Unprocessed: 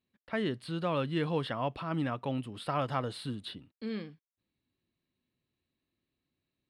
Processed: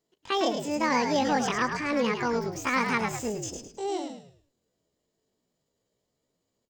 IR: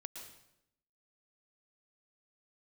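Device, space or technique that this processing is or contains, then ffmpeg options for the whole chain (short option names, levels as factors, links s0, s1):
chipmunk voice: -filter_complex "[0:a]asetrate=78577,aresample=44100,atempo=0.561231,asplit=5[s0][s1][s2][s3][s4];[s1]adelay=106,afreqshift=-67,volume=0.501[s5];[s2]adelay=212,afreqshift=-134,volume=0.166[s6];[s3]adelay=318,afreqshift=-201,volume=0.0543[s7];[s4]adelay=424,afreqshift=-268,volume=0.018[s8];[s0][s5][s6][s7][s8]amix=inputs=5:normalize=0,volume=1.88"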